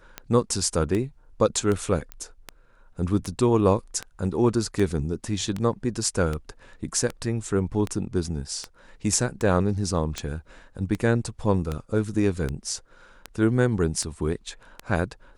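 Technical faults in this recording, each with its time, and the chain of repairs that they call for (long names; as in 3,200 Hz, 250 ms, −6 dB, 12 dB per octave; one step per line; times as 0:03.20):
scratch tick 78 rpm −15 dBFS
0:02.12: click −19 dBFS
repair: click removal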